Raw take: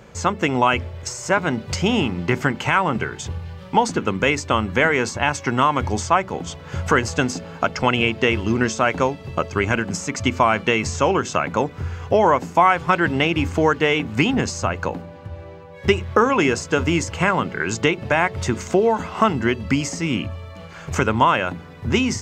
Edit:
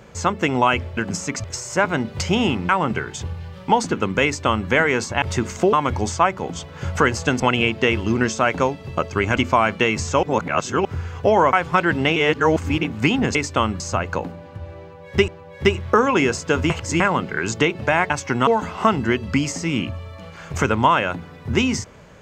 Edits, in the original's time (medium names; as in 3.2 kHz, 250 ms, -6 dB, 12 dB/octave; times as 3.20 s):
2.22–2.74 s: delete
4.29–4.74 s: copy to 14.50 s
5.27–5.64 s: swap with 18.33–18.84 s
7.31–7.80 s: delete
9.77–10.24 s: move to 0.97 s
11.10–11.72 s: reverse
12.40–12.68 s: delete
13.31–13.98 s: reverse
15.51–15.98 s: loop, 2 plays
16.93–17.23 s: reverse